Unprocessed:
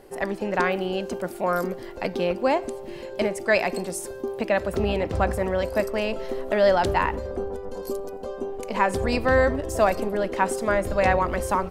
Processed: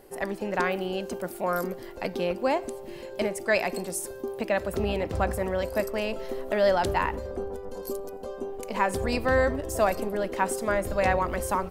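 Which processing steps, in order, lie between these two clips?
treble shelf 11 kHz +11.5 dB; trim -3.5 dB

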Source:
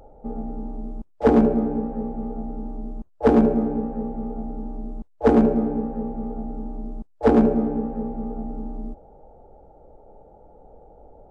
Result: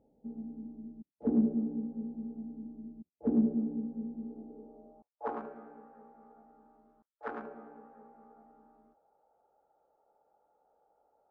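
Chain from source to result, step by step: band-pass sweep 230 Hz -> 1.4 kHz, 4.15–5.52 s; trim -8.5 dB

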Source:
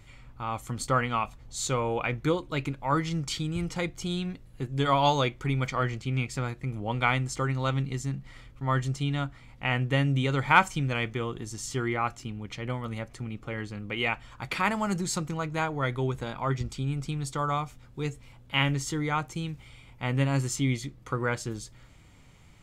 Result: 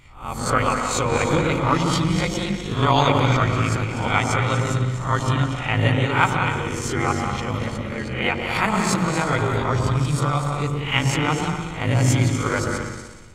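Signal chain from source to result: reverse spectral sustain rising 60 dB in 0.71 s; level rider gain up to 5.5 dB; on a send: delay with an opening low-pass 103 ms, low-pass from 200 Hz, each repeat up 2 oct, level 0 dB; on the sum: granular stretch 0.59×, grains 38 ms

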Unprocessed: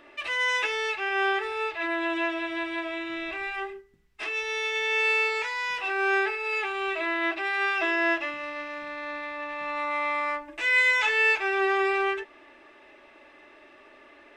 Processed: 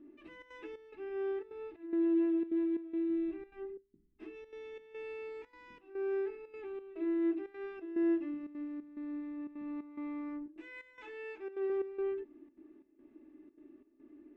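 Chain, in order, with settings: FFT filter 140 Hz 0 dB, 310 Hz +14 dB, 530 Hz -14 dB, 6.2 kHz -28 dB; trance gate "xxxxx.xxx..x" 179 bpm -12 dB; 10.46–11.70 s: bass shelf 270 Hz -9.5 dB; trim -6.5 dB

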